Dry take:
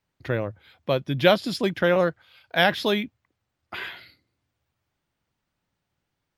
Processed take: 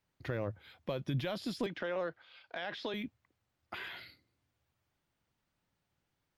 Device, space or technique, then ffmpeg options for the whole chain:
de-esser from a sidechain: -filter_complex "[0:a]asplit=2[s0][s1];[s1]highpass=f=4100:p=1,apad=whole_len=281224[s2];[s0][s2]sidechaincompress=threshold=0.00631:ratio=4:attack=1.6:release=36,asettb=1/sr,asplit=3[s3][s4][s5];[s3]atrim=end=1.664[s6];[s4]atrim=start=1.66:end=2.94,asetpts=PTS-STARTPTS,afade=t=in:d=0.004:c=qsin,afade=t=out:st=1.276:d=0.004:c=qsin,acrossover=split=250 6200:gain=0.224 1 0.0708[s7][s8][s9];[s7][s8][s9]amix=inputs=3:normalize=0[s10];[s5]atrim=start=2.936[s11];[s6][s10]acrossfade=d=0.004:c1=hsin:c2=qsin[s12];[s12][s11]acrossfade=d=0.004:c1=qsin:c2=hsin,volume=0.708"

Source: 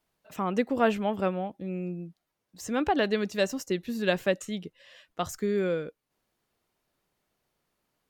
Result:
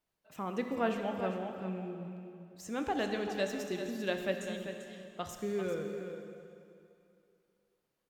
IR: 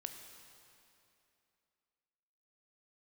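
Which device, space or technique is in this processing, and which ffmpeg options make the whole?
cave: -filter_complex "[0:a]aecho=1:1:394:0.335[s0];[1:a]atrim=start_sample=2205[s1];[s0][s1]afir=irnorm=-1:irlink=0,volume=0.596"

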